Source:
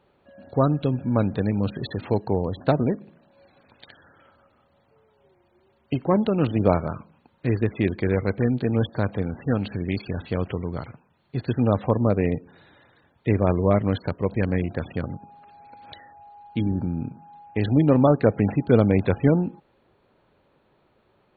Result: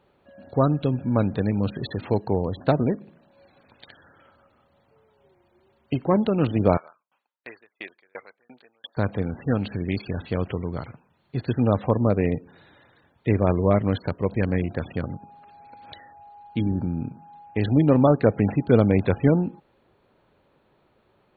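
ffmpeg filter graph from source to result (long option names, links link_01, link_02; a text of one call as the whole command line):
ffmpeg -i in.wav -filter_complex "[0:a]asettb=1/sr,asplit=3[link_01][link_02][link_03];[link_01]atrim=end=6.774[link_04];[link_02]atrim=start=6.77:end=8.97,asetpts=PTS-STARTPTS,afade=type=in:duration=0.004:curve=qsin,afade=type=out:start_time=2.196:duration=0.004:curve=qsin,highpass=900,aeval=exprs='val(0)*pow(10,-38*if(lt(mod(2.9*n/s,1),2*abs(2.9)/1000),1-mod(2.9*n/s,1)/(2*abs(2.9)/1000),(mod(2.9*n/s,1)-2*abs(2.9)/1000)/(1-2*abs(2.9)/1000))/20)':channel_layout=same[link_05];[link_03]atrim=start=8.966[link_06];[link_04][link_05]acrossfade=duration=0.004:curve1=hsin:curve2=qsin[link_07];[link_07][link_06]acrossfade=duration=0.004:curve1=qsin:curve2=hsin" out.wav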